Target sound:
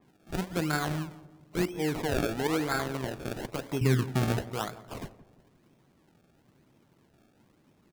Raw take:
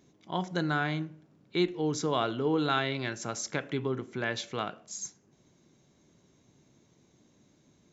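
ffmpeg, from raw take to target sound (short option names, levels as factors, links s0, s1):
-filter_complex "[0:a]asettb=1/sr,asplit=3[s0][s1][s2];[s0]atrim=end=0.894[s3];[s1]atrim=start=0.89:end=1.65,asetpts=PTS-STARTPTS,afade=t=in:d=0.004:c=qsin,afade=t=out:st=0.756:d=0.004:c=qsin,aecho=1:1:1.2:0.41,atrim=end_sample=33516[s4];[s2]atrim=start=1.646[s5];[s3][s4]acrossfade=d=0.004:c1=hsin:c2=qsin[s6];[s6][s5]acrossfade=d=0.004:c1=qsin:c2=hsin,asettb=1/sr,asplit=3[s7][s8][s9];[s7]atrim=end=2.474[s10];[s8]atrim=start=2.47:end=2.94,asetpts=PTS-STARTPTS,afade=t=in:d=0.004:c=qsin,afade=t=out:st=0.466:d=0.004:c=qsin,agate=range=0.0224:threshold=0.0562:ratio=3:detection=peak[s11];[s9]atrim=start=2.936[s12];[s10][s11]acrossfade=d=0.004:c1=hsin:c2=qsin[s13];[s13][s12]acrossfade=d=0.004:c1=qsin:c2=hsin,asettb=1/sr,asplit=3[s14][s15][s16];[s14]atrim=end=3.814[s17];[s15]atrim=start=3.81:end=4.39,asetpts=PTS-STARTPTS,afade=t=in:d=0.004:c=qsin,afade=t=out:st=0.576:d=0.004:c=qsin,bass=f=250:g=15,treble=f=4000:g=9[s18];[s16]atrim=start=4.386[s19];[s17][s18]acrossfade=d=0.004:c1=hsin:c2=qsin[s20];[s20][s19]acrossfade=d=0.004:c1=qsin:c2=hsin,acrusher=samples=30:mix=1:aa=0.000001:lfo=1:lforange=30:lforate=1,asplit=2[s21][s22];[s22]adelay=171,lowpass=f=1000:p=1,volume=0.178,asplit=2[s23][s24];[s24]adelay=171,lowpass=f=1000:p=1,volume=0.5,asplit=2[s25][s26];[s26]adelay=171,lowpass=f=1000:p=1,volume=0.5,asplit=2[s27][s28];[s28]adelay=171,lowpass=f=1000:p=1,volume=0.5,asplit=2[s29][s30];[s30]adelay=171,lowpass=f=1000:p=1,volume=0.5[s31];[s21][s23][s25][s27][s29][s31]amix=inputs=6:normalize=0,adynamicequalizer=threshold=0.00631:dfrequency=3600:dqfactor=0.7:tfrequency=3600:tqfactor=0.7:attack=5:release=100:ratio=0.375:range=1.5:mode=cutabove:tftype=highshelf"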